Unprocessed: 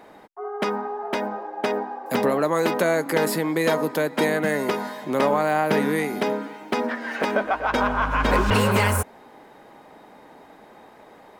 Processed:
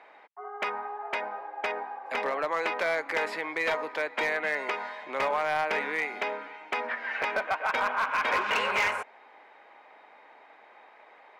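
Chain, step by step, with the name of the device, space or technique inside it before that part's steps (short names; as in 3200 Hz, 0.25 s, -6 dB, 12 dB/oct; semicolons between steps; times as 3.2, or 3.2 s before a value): megaphone (BPF 690–3200 Hz; bell 2300 Hz +7.5 dB 0.52 oct; hard clip -17 dBFS, distortion -18 dB); gain -3.5 dB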